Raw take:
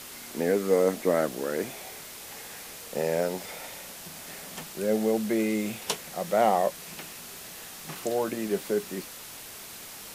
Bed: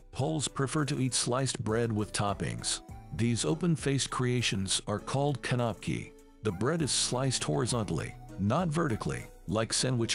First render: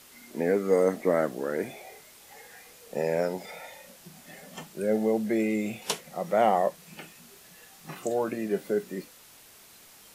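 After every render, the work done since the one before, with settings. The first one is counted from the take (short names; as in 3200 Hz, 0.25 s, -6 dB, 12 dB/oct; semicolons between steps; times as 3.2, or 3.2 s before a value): noise print and reduce 10 dB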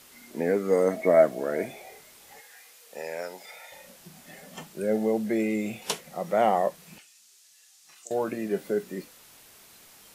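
0.9–1.66 small resonant body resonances 650/2200 Hz, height 16 dB, ringing for 90 ms; 2.4–3.72 HPF 1300 Hz 6 dB/oct; 6.98–8.11 band-pass 6400 Hz, Q 1.2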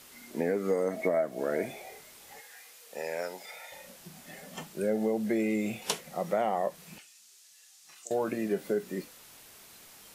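compressor 10:1, threshold -24 dBFS, peak gain reduction 12 dB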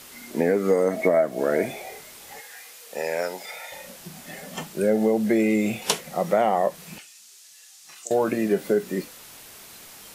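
gain +8 dB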